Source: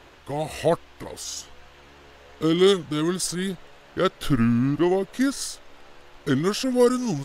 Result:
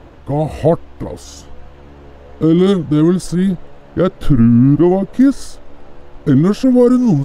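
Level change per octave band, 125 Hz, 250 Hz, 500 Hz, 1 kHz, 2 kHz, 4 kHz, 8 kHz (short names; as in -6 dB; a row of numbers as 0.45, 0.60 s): +13.5, +12.0, +7.0, +5.0, -0.5, -3.0, -3.5 dB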